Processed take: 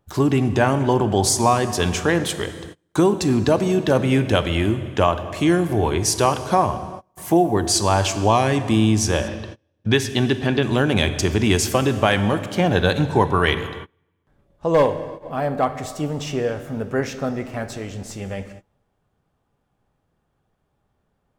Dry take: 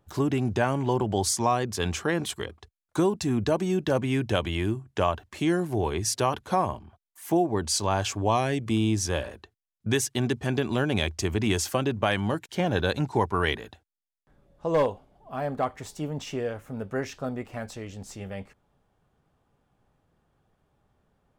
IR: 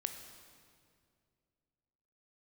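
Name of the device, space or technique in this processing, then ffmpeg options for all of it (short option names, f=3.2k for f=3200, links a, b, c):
keyed gated reverb: -filter_complex "[0:a]asplit=3[a][b][c];[1:a]atrim=start_sample=2205[d];[b][d]afir=irnorm=-1:irlink=0[e];[c]apad=whole_len=942994[f];[e][f]sidechaingate=range=-29dB:threshold=-56dB:ratio=16:detection=peak,volume=5.5dB[g];[a][g]amix=inputs=2:normalize=0,asettb=1/sr,asplit=3[h][i][j];[h]atrim=end=9.284[k];[i]atrim=start=9.28:end=10.63,asetpts=PTS-STARTPTS,afade=t=in:d=0.004:c=qsin,afade=t=out:st=1.346:d=0.004:c=qsin,highshelf=f=5.5k:t=q:w=1.5:g=-9[l];[j]atrim=start=10.626[m];[k][l]acrossfade=d=0.004:c1=hsin:c2=qsin[n];[n][m]acrossfade=d=0.004:c1=qsin:c2=hsin,volume=-1.5dB"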